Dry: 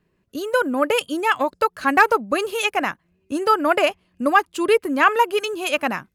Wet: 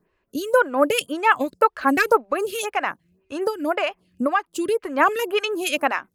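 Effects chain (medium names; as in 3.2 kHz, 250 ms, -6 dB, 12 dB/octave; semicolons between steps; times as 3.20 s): 2.18–4.82 s: compression 6:1, threshold -20 dBFS, peak gain reduction 10.5 dB; lamp-driven phase shifter 1.9 Hz; trim +3.5 dB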